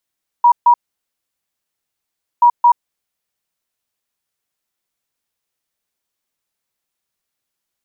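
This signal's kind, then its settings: beep pattern sine 959 Hz, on 0.08 s, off 0.14 s, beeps 2, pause 1.68 s, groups 2, -5.5 dBFS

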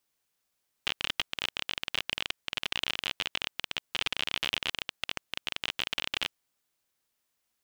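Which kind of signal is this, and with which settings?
random clicks 33/s -12.5 dBFS 5.46 s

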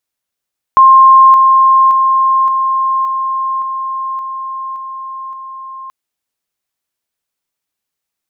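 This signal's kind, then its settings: level ladder 1060 Hz -1.5 dBFS, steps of -3 dB, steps 9, 0.57 s 0.00 s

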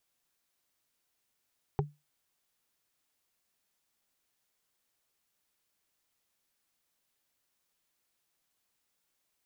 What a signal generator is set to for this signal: wood hit, lowest mode 147 Hz, modes 3, decay 0.23 s, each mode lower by 0.5 dB, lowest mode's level -23.5 dB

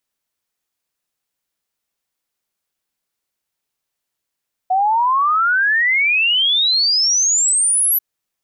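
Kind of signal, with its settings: log sweep 730 Hz -> 12000 Hz 3.29 s -12.5 dBFS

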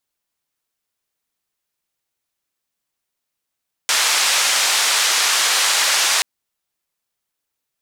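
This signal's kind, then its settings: noise band 840–7100 Hz, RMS -17 dBFS 2.33 s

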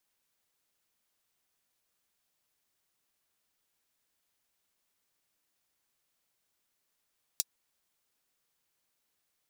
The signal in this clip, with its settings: closed hi-hat, high-pass 4900 Hz, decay 0.04 s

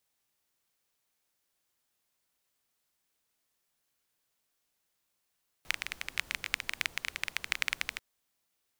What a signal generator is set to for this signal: rain from filtered ticks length 2.34 s, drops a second 15, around 2200 Hz, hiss -17.5 dB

